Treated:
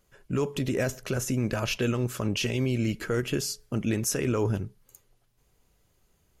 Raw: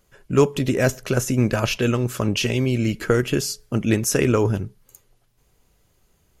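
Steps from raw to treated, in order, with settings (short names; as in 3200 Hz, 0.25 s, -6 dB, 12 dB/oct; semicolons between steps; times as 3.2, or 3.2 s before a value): limiter -12 dBFS, peak gain reduction 8.5 dB; gain -5 dB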